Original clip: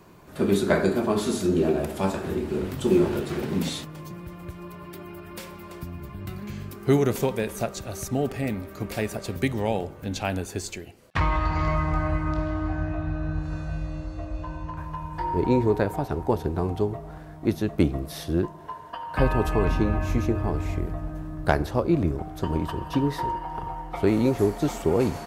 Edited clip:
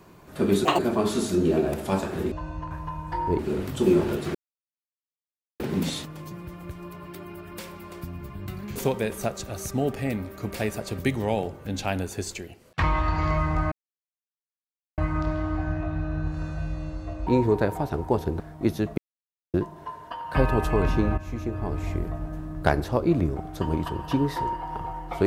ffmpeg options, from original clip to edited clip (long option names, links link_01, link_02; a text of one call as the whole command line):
ffmpeg -i in.wav -filter_complex "[0:a]asplit=13[link_01][link_02][link_03][link_04][link_05][link_06][link_07][link_08][link_09][link_10][link_11][link_12][link_13];[link_01]atrim=end=0.654[link_14];[link_02]atrim=start=0.65:end=0.9,asetpts=PTS-STARTPTS,asetrate=80262,aresample=44100[link_15];[link_03]atrim=start=0.896:end=2.432[link_16];[link_04]atrim=start=14.378:end=15.452[link_17];[link_05]atrim=start=2.428:end=3.39,asetpts=PTS-STARTPTS,afade=type=out:start_time=0.958:duration=0.004:curve=hsin,apad=pad_dur=1.25[link_18];[link_06]atrim=start=3.39:end=6.552,asetpts=PTS-STARTPTS,afade=type=in:duration=0.004:curve=hsin[link_19];[link_07]atrim=start=7.128:end=12.09,asetpts=PTS-STARTPTS,afade=type=out:start_time=4.958:duration=0.004:curve=hsin,apad=pad_dur=1.26[link_20];[link_08]atrim=start=12.09:end=14.382,asetpts=PTS-STARTPTS,afade=type=in:duration=0.004:curve=hsin[link_21];[link_09]atrim=start=15.448:end=16.582[link_22];[link_10]atrim=start=17.218:end=17.8,asetpts=PTS-STARTPTS,afade=type=out:start_time=0.578:duration=0.004:curve=hsin[link_23];[link_11]atrim=start=17.8:end=18.36,asetpts=PTS-STARTPTS,volume=0[link_24];[link_12]atrim=start=18.36:end=20,asetpts=PTS-STARTPTS,afade=type=in:duration=0.004:curve=hsin,afade=type=out:start_time=1.636:duration=0.004:curve=hsin:silence=0.223872[link_25];[link_13]atrim=start=20,asetpts=PTS-STARTPTS,afade=type=in:duration=0.81:silence=0.223872[link_26];[link_14][link_15]acrossfade=duration=0.004:curve1=hsin:curve2=hsin[link_27];[link_27][link_16]acrossfade=duration=0.004:curve1=hsin:curve2=hsin[link_28];[link_28][link_17]acrossfade=duration=0.004:curve1=hsin:curve2=hsin[link_29];[link_18][link_19]concat=n=2:v=0:a=1[link_30];[link_29][link_30]acrossfade=duration=0.004:curve1=hsin:curve2=hsin[link_31];[link_20][link_21]concat=n=2:v=0:a=1[link_32];[link_31][link_32]acrossfade=duration=0.004:curve1=hsin:curve2=hsin[link_33];[link_33][link_22]acrossfade=duration=0.004:curve1=hsin:curve2=hsin[link_34];[link_23][link_24][link_25][link_26]concat=n=4:v=0:a=1[link_35];[link_34][link_35]acrossfade=duration=0.004:curve1=hsin:curve2=hsin" out.wav